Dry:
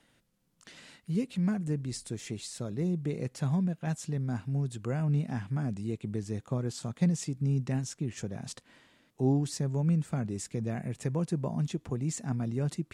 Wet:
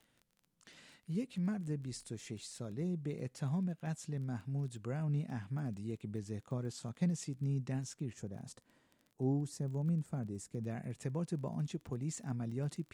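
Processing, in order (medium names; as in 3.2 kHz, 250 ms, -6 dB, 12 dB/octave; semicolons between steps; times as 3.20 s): 8.13–10.61 s: peaking EQ 2.9 kHz -9 dB 2.2 oct; crackle 16 per s -40 dBFS; trim -7 dB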